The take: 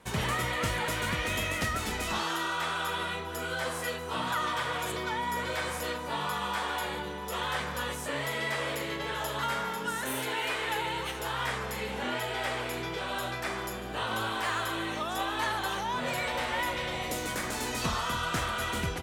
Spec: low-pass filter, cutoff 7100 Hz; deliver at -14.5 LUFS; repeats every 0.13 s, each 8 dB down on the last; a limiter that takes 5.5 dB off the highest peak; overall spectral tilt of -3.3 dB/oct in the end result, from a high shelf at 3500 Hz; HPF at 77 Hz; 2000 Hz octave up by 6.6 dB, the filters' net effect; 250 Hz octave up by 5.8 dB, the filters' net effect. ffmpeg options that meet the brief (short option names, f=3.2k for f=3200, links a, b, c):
-af "highpass=77,lowpass=7.1k,equalizer=f=250:t=o:g=7.5,equalizer=f=2k:t=o:g=7,highshelf=f=3.5k:g=4,alimiter=limit=-19dB:level=0:latency=1,aecho=1:1:130|260|390|520|650:0.398|0.159|0.0637|0.0255|0.0102,volume=13dB"